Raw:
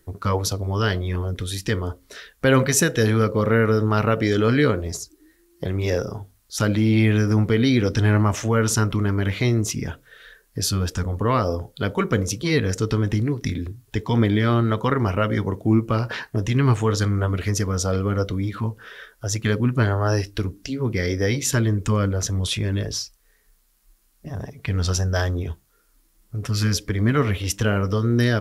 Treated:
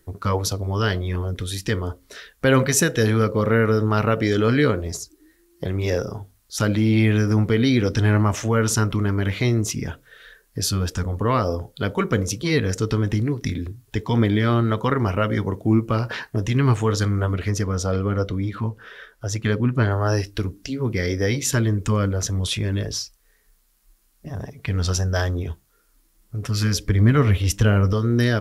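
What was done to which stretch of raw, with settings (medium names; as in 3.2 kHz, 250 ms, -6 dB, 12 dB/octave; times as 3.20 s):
17.34–19.91 s: treble shelf 5.3 kHz -7 dB
26.78–27.93 s: bass shelf 110 Hz +11.5 dB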